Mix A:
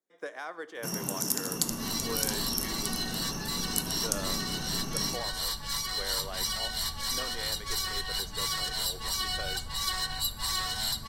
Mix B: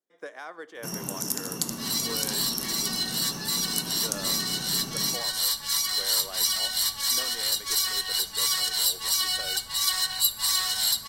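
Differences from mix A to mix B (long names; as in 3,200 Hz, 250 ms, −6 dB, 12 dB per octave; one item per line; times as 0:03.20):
speech: send −6.5 dB
second sound: add spectral tilt +3 dB per octave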